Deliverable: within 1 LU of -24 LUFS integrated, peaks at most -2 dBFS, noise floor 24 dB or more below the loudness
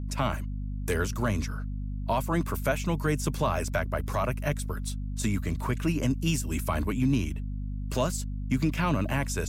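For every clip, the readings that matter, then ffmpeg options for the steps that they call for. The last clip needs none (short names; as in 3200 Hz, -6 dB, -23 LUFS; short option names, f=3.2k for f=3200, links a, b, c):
hum 50 Hz; harmonics up to 250 Hz; hum level -31 dBFS; loudness -29.5 LUFS; peak -14.5 dBFS; loudness target -24.0 LUFS
-> -af "bandreject=f=50:t=h:w=4,bandreject=f=100:t=h:w=4,bandreject=f=150:t=h:w=4,bandreject=f=200:t=h:w=4,bandreject=f=250:t=h:w=4"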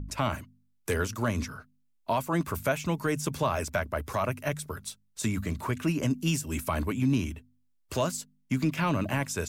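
hum none; loudness -30.5 LUFS; peak -16.0 dBFS; loudness target -24.0 LUFS
-> -af "volume=6.5dB"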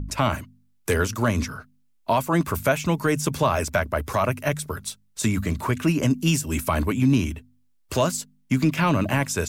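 loudness -24.0 LUFS; peak -9.5 dBFS; noise floor -62 dBFS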